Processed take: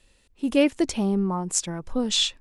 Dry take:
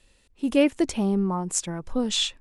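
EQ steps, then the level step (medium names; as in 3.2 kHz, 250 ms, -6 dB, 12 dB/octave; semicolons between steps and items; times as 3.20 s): dynamic bell 4.8 kHz, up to +4 dB, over -42 dBFS, Q 1.2; 0.0 dB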